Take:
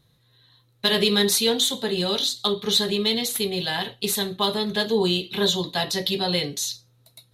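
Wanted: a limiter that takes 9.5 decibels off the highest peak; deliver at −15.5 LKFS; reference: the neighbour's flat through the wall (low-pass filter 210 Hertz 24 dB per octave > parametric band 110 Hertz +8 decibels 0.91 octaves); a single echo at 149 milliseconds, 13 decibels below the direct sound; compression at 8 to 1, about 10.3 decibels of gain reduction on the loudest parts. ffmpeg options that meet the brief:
ffmpeg -i in.wav -af "acompressor=threshold=-27dB:ratio=8,alimiter=limit=-21.5dB:level=0:latency=1,lowpass=frequency=210:width=0.5412,lowpass=frequency=210:width=1.3066,equalizer=frequency=110:width_type=o:width=0.91:gain=8,aecho=1:1:149:0.224,volume=24.5dB" out.wav

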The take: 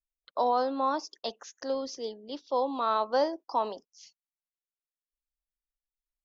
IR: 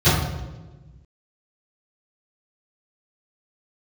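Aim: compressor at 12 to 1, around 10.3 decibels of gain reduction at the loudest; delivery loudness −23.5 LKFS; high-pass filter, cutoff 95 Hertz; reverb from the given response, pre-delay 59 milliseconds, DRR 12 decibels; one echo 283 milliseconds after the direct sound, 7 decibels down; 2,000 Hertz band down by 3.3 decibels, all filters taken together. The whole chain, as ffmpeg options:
-filter_complex "[0:a]highpass=95,equalizer=frequency=2000:width_type=o:gain=-5,acompressor=threshold=-32dB:ratio=12,aecho=1:1:283:0.447,asplit=2[link_01][link_02];[1:a]atrim=start_sample=2205,adelay=59[link_03];[link_02][link_03]afir=irnorm=-1:irlink=0,volume=-34dB[link_04];[link_01][link_04]amix=inputs=2:normalize=0,volume=14dB"

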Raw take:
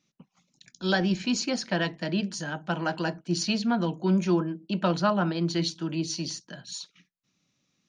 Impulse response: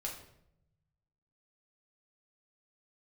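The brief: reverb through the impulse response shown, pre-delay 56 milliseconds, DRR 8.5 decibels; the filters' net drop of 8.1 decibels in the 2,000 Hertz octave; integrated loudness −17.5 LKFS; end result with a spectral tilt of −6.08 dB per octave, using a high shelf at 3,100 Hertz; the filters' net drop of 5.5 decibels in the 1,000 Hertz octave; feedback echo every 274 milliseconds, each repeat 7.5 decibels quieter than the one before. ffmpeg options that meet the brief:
-filter_complex "[0:a]equalizer=frequency=1000:width_type=o:gain=-5,equalizer=frequency=2000:width_type=o:gain=-7.5,highshelf=frequency=3100:gain=-5.5,aecho=1:1:274|548|822|1096|1370:0.422|0.177|0.0744|0.0312|0.0131,asplit=2[link_01][link_02];[1:a]atrim=start_sample=2205,adelay=56[link_03];[link_02][link_03]afir=irnorm=-1:irlink=0,volume=-8.5dB[link_04];[link_01][link_04]amix=inputs=2:normalize=0,volume=10.5dB"

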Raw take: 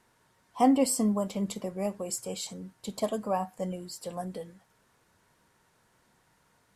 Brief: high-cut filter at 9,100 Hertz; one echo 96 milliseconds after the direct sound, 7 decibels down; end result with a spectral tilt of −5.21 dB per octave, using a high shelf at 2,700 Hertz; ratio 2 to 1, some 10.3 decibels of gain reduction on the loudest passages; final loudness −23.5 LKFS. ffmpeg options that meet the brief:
ffmpeg -i in.wav -af "lowpass=9100,highshelf=frequency=2700:gain=-4.5,acompressor=threshold=-37dB:ratio=2,aecho=1:1:96:0.447,volume=14dB" out.wav

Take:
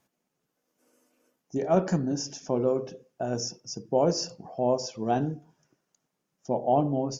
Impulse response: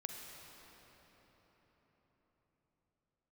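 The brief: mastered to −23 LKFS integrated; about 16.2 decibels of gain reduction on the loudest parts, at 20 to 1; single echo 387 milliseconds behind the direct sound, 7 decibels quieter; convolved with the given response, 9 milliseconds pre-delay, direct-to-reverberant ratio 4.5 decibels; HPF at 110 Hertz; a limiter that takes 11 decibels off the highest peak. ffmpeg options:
-filter_complex "[0:a]highpass=110,acompressor=threshold=-34dB:ratio=20,alimiter=level_in=9dB:limit=-24dB:level=0:latency=1,volume=-9dB,aecho=1:1:387:0.447,asplit=2[link_01][link_02];[1:a]atrim=start_sample=2205,adelay=9[link_03];[link_02][link_03]afir=irnorm=-1:irlink=0,volume=-3dB[link_04];[link_01][link_04]amix=inputs=2:normalize=0,volume=19dB"

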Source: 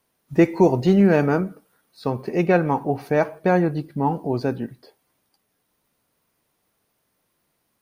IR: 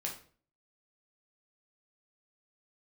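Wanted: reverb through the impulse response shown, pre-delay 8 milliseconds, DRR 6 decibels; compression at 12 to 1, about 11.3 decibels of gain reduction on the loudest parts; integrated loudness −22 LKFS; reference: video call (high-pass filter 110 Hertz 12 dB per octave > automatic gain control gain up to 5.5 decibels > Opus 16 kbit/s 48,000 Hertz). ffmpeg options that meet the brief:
-filter_complex "[0:a]acompressor=threshold=-22dB:ratio=12,asplit=2[link_01][link_02];[1:a]atrim=start_sample=2205,adelay=8[link_03];[link_02][link_03]afir=irnorm=-1:irlink=0,volume=-7dB[link_04];[link_01][link_04]amix=inputs=2:normalize=0,highpass=110,dynaudnorm=maxgain=5.5dB,volume=6.5dB" -ar 48000 -c:a libopus -b:a 16k

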